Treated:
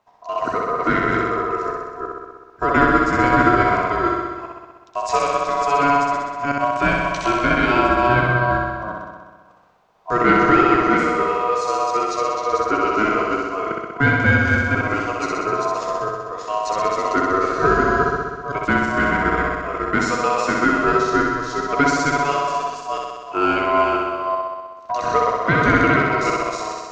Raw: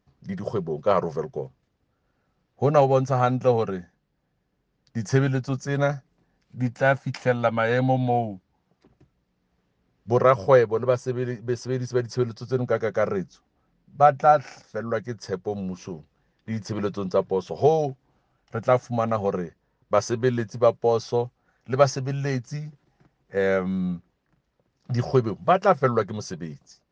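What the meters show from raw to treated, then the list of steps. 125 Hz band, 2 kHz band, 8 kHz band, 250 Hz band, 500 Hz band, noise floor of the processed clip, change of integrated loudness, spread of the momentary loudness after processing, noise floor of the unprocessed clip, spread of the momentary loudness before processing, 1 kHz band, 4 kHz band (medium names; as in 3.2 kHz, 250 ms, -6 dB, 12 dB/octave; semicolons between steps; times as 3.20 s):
+0.5 dB, +14.0 dB, no reading, +7.0 dB, +1.0 dB, -44 dBFS, +5.0 dB, 11 LU, -73 dBFS, 15 LU, +9.0 dB, +9.0 dB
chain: chunks repeated in reverse 343 ms, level -3.5 dB; in parallel at +0.5 dB: compression, threshold -29 dBFS, peak gain reduction 17 dB; on the sum: saturation -6 dBFS, distortion -22 dB; ring modulator 850 Hz; flutter echo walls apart 10.9 m, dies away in 1.4 s; trim +2 dB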